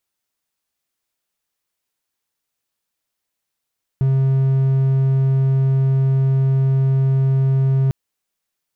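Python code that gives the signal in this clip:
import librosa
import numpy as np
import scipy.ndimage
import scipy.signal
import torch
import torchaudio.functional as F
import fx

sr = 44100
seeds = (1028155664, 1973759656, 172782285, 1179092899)

y = 10.0 ** (-11.0 / 20.0) * (1.0 - 4.0 * np.abs(np.mod(134.0 * (np.arange(round(3.9 * sr)) / sr) + 0.25, 1.0) - 0.5))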